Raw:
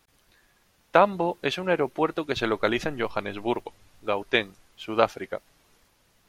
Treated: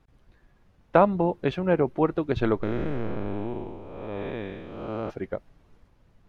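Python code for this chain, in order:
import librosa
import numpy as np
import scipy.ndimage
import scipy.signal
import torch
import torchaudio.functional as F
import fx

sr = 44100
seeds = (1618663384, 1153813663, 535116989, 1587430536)

y = fx.spec_blur(x, sr, span_ms=389.0, at=(2.62, 5.09), fade=0.02)
y = fx.lowpass(y, sr, hz=1100.0, slope=6)
y = fx.low_shelf(y, sr, hz=220.0, db=11.5)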